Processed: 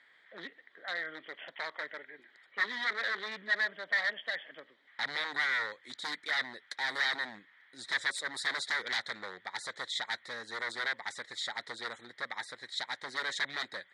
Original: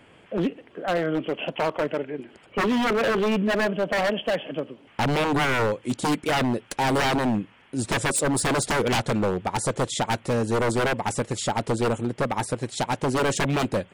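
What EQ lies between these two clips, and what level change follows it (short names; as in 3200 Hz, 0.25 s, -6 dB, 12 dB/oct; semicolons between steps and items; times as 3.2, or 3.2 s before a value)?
double band-pass 2700 Hz, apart 1 oct; +3.0 dB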